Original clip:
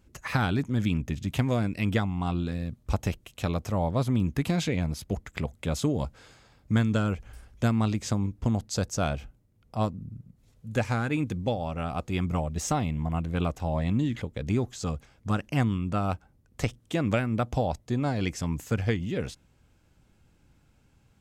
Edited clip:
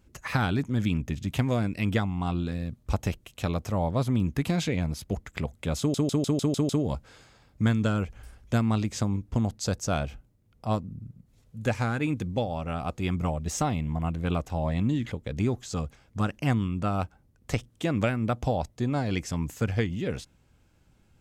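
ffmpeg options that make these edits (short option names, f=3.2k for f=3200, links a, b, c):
-filter_complex "[0:a]asplit=7[a][b][c][d][e][f][g];[a]atrim=end=5.942[h];[b]atrim=start=5.788:end=5.942[i];[c]atrim=start=5.788:end=5.942[j];[d]atrim=start=5.788:end=5.942[k];[e]atrim=start=5.788:end=5.942[l];[f]atrim=start=5.788:end=5.942[m];[g]atrim=start=5.788[n];[h][i]acrossfade=d=0.004:c1=hsin:c2=hsin[o];[o][j]acrossfade=d=0.004:c1=hsin:c2=hsin[p];[p][k]acrossfade=d=0.004:c1=hsin:c2=hsin[q];[q][l]acrossfade=d=0.004:c1=hsin:c2=hsin[r];[r][m]acrossfade=d=0.004:c1=hsin:c2=hsin[s];[s][n]acrossfade=d=0.004:c1=hsin:c2=hsin"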